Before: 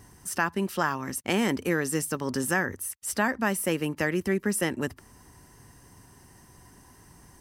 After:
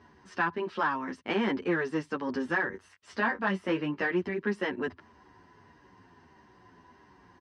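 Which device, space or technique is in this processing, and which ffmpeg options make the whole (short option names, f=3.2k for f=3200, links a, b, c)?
barber-pole flanger into a guitar amplifier: -filter_complex "[0:a]asplit=2[a][b];[b]adelay=9.6,afreqshift=-1.6[c];[a][c]amix=inputs=2:normalize=1,asoftclip=type=tanh:threshold=-20dB,highpass=96,equalizer=f=130:t=q:w=4:g=-10,equalizer=f=380:t=q:w=4:g=4,equalizer=f=990:t=q:w=4:g=5,equalizer=f=1.6k:t=q:w=4:g=4,lowpass=f=4.1k:w=0.5412,lowpass=f=4.1k:w=1.3066,asettb=1/sr,asplit=3[d][e][f];[d]atrim=end=2.704[g];[e]atrim=start=2.7:end=4.11,asetpts=PTS-STARTPTS,afade=t=in:d=0.004:c=qsin,afade=t=out:st=1.406:d=0.004:c=qsin,asplit=2[h][i];[i]adelay=21,volume=-8dB[j];[h][j]amix=inputs=2:normalize=0,atrim=end_sample=62181[k];[f]atrim=start=4.106[l];[g][k]acrossfade=d=0.004:c1=hsin:c2=qsin[m];[m][l]acrossfade=d=0.004:c1=qsin:c2=hsin"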